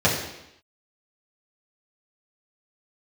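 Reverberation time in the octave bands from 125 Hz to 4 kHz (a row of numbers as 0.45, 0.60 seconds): 0.75, 0.85, 0.80, 0.85, 0.85, 0.85 seconds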